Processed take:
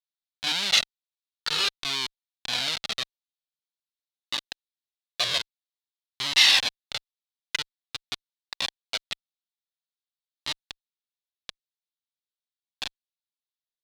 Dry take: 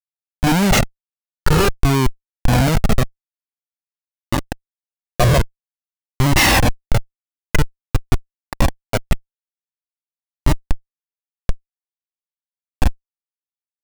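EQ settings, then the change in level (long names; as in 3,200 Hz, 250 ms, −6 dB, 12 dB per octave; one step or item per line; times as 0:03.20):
resonant band-pass 3,800 Hz, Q 3.2
+6.0 dB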